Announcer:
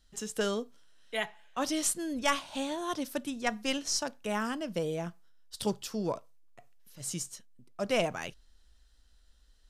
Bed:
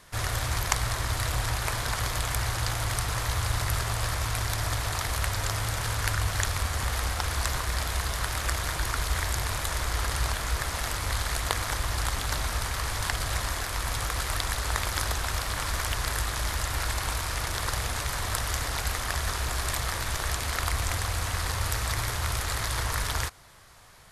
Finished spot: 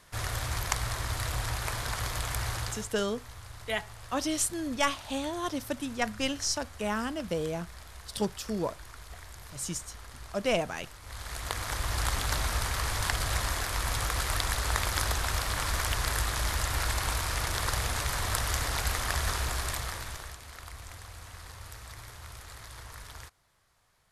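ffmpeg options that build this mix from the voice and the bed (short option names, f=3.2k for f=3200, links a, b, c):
-filter_complex "[0:a]adelay=2550,volume=1dB[a];[1:a]volume=14dB,afade=t=out:st=2.56:d=0.33:silence=0.188365,afade=t=in:st=11.02:d=1.08:silence=0.125893,afade=t=out:st=19.32:d=1.05:silence=0.158489[b];[a][b]amix=inputs=2:normalize=0"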